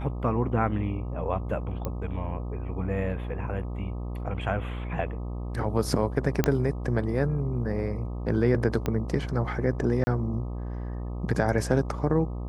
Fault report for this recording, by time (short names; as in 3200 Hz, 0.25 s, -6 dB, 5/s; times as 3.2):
buzz 60 Hz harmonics 21 -33 dBFS
1.85 pop -18 dBFS
6.44 pop -8 dBFS
8.86 pop -14 dBFS
10.04–10.07 gap 30 ms